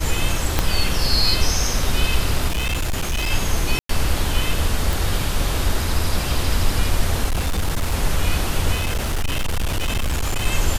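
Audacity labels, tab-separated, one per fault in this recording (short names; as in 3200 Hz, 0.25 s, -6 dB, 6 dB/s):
0.590000	0.590000	pop -2 dBFS
2.480000	3.310000	clipped -18 dBFS
3.790000	3.890000	gap 0.103 s
4.930000	4.930000	pop
7.240000	7.940000	clipped -16.5 dBFS
8.740000	10.470000	clipped -17.5 dBFS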